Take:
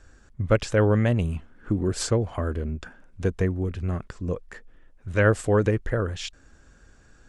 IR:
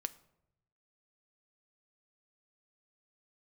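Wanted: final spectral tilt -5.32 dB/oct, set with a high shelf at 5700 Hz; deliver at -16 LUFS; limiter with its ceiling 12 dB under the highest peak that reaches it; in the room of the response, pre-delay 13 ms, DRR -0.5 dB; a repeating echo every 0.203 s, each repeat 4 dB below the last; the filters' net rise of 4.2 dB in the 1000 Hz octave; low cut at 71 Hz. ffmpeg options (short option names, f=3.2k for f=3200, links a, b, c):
-filter_complex "[0:a]highpass=71,equalizer=f=1k:t=o:g=5.5,highshelf=f=5.7k:g=3,alimiter=limit=-16dB:level=0:latency=1,aecho=1:1:203|406|609|812|1015|1218|1421|1624|1827:0.631|0.398|0.25|0.158|0.0994|0.0626|0.0394|0.0249|0.0157,asplit=2[a][b];[1:a]atrim=start_sample=2205,adelay=13[c];[b][c]afir=irnorm=-1:irlink=0,volume=1.5dB[d];[a][d]amix=inputs=2:normalize=0,volume=8.5dB"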